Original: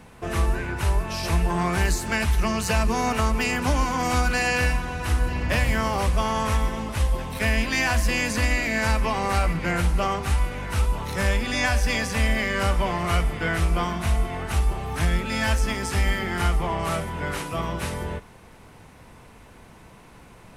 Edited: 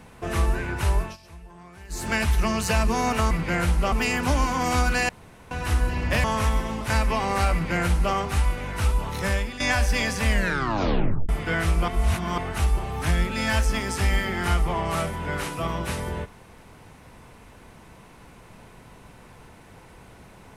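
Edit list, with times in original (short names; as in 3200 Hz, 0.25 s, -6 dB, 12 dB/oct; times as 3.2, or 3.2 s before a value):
1.02–2.04 dip -22.5 dB, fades 0.15 s
4.48–4.9 room tone
5.63–6.32 cut
6.98–8.84 cut
9.47–10.08 copy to 3.31
11.17–11.54 fade out, to -12 dB
12.23 tape stop 1.00 s
13.82–14.32 reverse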